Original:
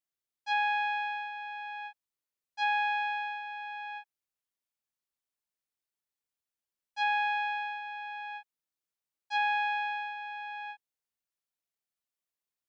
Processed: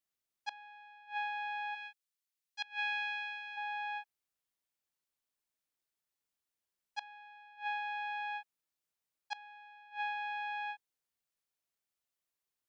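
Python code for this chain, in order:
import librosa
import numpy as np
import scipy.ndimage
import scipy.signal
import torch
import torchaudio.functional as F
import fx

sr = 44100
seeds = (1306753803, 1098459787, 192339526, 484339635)

y = fx.bessel_highpass(x, sr, hz=2000.0, order=2, at=(1.74, 3.56), fade=0.02)
y = fx.gate_flip(y, sr, shuts_db=-26.0, range_db=-26)
y = y * 10.0 ** (1.0 / 20.0)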